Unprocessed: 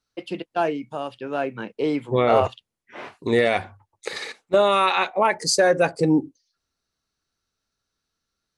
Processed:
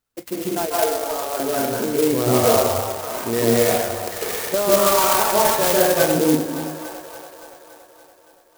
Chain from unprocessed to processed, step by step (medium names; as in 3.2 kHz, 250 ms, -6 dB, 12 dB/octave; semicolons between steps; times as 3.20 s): feedback echo behind a band-pass 284 ms, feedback 65%, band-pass 1.2 kHz, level -15 dB; reverberation RT60 1.1 s, pre-delay 137 ms, DRR -8 dB; compression 1.5:1, threshold -24 dBFS, peak gain reduction 7.5 dB; 0.66–1.40 s: high-pass 380 Hz 24 dB/octave; sampling jitter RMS 0.1 ms